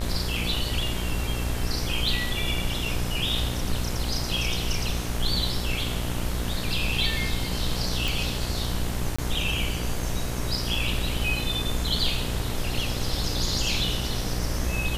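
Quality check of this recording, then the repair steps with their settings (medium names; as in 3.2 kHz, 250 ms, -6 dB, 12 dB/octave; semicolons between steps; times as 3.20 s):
buzz 60 Hz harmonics 38 -31 dBFS
8.08 s: pop
9.16–9.19 s: dropout 25 ms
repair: de-click; de-hum 60 Hz, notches 38; interpolate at 9.16 s, 25 ms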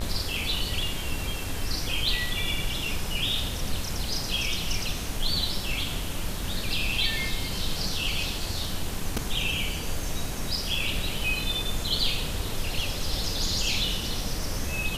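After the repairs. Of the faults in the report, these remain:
nothing left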